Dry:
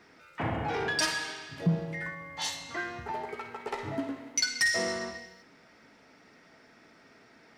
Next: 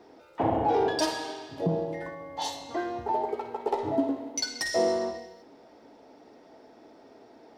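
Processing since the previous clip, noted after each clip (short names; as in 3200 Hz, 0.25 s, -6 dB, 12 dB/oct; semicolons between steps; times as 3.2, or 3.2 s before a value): EQ curve 110 Hz 0 dB, 170 Hz -4 dB, 300 Hz +9 dB, 850 Hz +9 dB, 1300 Hz -5 dB, 2200 Hz -9 dB, 3500 Hz -1 dB, 8700 Hz -5 dB, 13000 Hz -1 dB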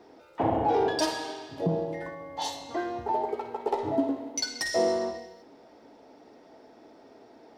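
nothing audible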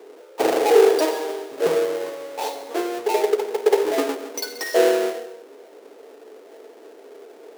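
half-waves squared off; resonant high-pass 430 Hz, resonance Q 4.9; gain -2 dB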